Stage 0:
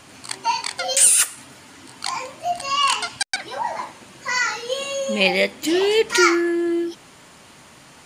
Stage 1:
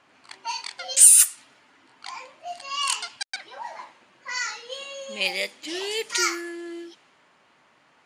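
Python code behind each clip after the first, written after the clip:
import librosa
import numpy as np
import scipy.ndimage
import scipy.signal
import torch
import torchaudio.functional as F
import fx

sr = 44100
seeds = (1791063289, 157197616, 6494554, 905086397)

y = fx.env_lowpass(x, sr, base_hz=1800.0, full_db=-12.5)
y = fx.riaa(y, sr, side='recording')
y = y * librosa.db_to_amplitude(-10.5)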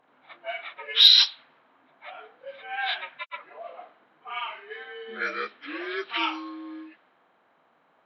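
y = fx.partial_stretch(x, sr, pct=76)
y = fx.cheby_harmonics(y, sr, harmonics=(3,), levels_db=(-27,), full_scale_db=0.5)
y = y * librosa.db_to_amplitude(-1.5)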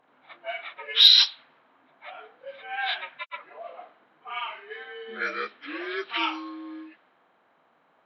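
y = x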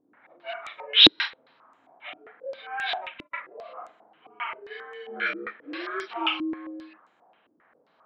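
y = fx.doubler(x, sr, ms=37.0, db=-4.5)
y = fx.filter_held_lowpass(y, sr, hz=7.5, low_hz=310.0, high_hz=7300.0)
y = y * librosa.db_to_amplitude(-3.0)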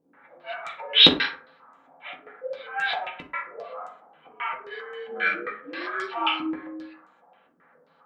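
y = fx.rev_fdn(x, sr, rt60_s=0.48, lf_ratio=0.85, hf_ratio=0.45, size_ms=35.0, drr_db=-2.0)
y = y * librosa.db_to_amplitude(-1.0)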